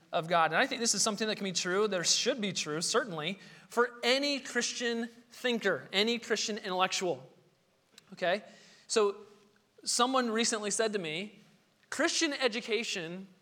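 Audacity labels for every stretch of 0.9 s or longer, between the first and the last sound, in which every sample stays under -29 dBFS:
7.130000	8.220000	silence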